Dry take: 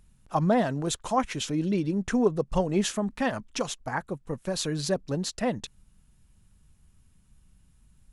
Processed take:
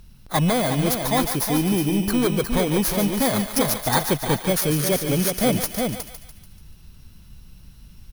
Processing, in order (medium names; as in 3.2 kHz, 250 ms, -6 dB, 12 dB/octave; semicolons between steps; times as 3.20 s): bit-reversed sample order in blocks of 16 samples; in parallel at +1 dB: peak limiter -19 dBFS, peak gain reduction 8.5 dB; on the sum: sine folder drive 5 dB, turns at -9 dBFS; delay 362 ms -6.5 dB; gain riding within 4 dB 0.5 s; thinning echo 145 ms, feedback 49%, high-pass 820 Hz, level -7.5 dB; trim -6 dB